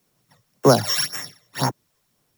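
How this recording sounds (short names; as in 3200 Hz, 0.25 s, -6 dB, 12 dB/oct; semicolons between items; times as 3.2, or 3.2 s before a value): a buzz of ramps at a fixed pitch in blocks of 8 samples; phasing stages 12, 1.9 Hz, lowest notch 240–4500 Hz; a quantiser's noise floor 12-bit, dither triangular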